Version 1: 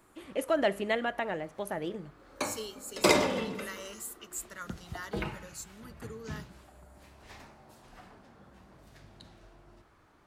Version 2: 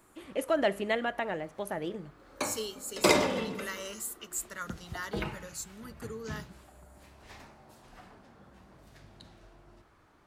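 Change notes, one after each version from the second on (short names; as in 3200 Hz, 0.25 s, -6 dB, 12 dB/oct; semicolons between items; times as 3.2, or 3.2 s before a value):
second voice +3.5 dB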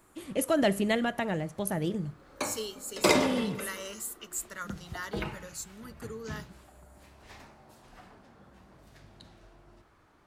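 first voice: add tone controls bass +15 dB, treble +11 dB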